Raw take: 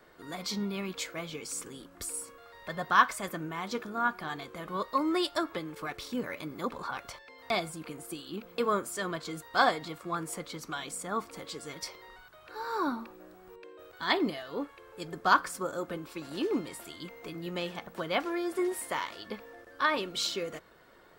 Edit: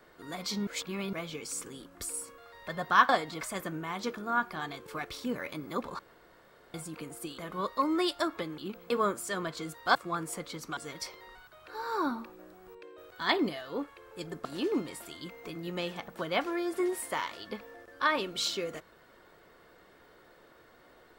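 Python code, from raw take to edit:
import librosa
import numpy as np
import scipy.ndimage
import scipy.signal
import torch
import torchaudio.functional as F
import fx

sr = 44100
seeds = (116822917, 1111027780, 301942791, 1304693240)

y = fx.edit(x, sr, fx.reverse_span(start_s=0.67, length_s=0.46),
    fx.move(start_s=4.54, length_s=1.2, to_s=8.26),
    fx.room_tone_fill(start_s=6.87, length_s=0.75),
    fx.move(start_s=9.63, length_s=0.32, to_s=3.09),
    fx.cut(start_s=10.77, length_s=0.81),
    fx.cut(start_s=15.26, length_s=0.98), tone=tone)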